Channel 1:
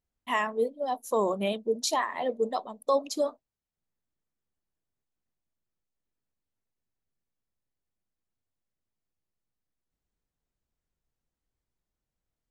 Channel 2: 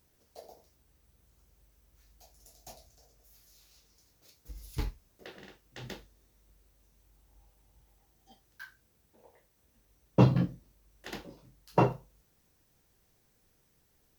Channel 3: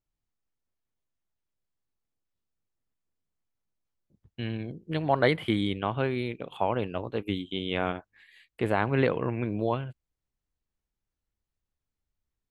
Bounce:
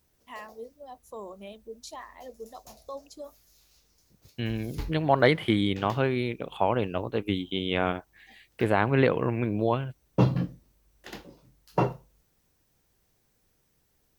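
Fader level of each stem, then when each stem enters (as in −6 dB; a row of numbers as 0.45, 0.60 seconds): −14.5, −0.5, +2.5 decibels; 0.00, 0.00, 0.00 seconds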